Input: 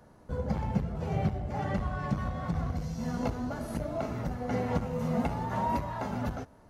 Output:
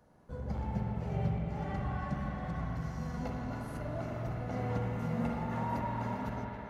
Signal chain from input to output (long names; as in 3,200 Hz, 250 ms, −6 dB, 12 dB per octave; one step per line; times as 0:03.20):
feedback echo with a band-pass in the loop 277 ms, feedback 77%, band-pass 1,800 Hz, level −7 dB
spring reverb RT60 3.2 s, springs 43/51 ms, chirp 75 ms, DRR −1.5 dB
level −8.5 dB